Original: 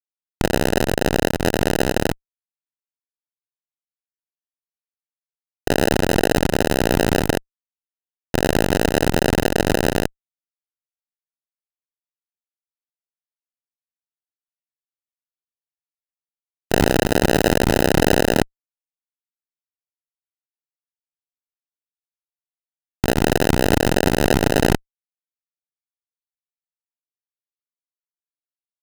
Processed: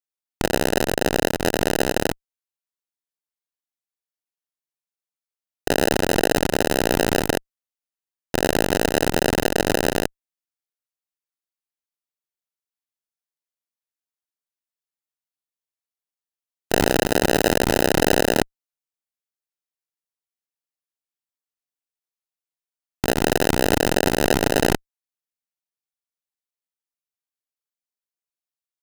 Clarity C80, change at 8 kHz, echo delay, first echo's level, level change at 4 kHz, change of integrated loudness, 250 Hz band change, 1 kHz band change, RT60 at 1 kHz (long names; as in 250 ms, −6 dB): no reverb audible, +1.0 dB, no echo audible, no echo audible, 0.0 dB, −1.5 dB, −3.0 dB, −1.0 dB, no reverb audible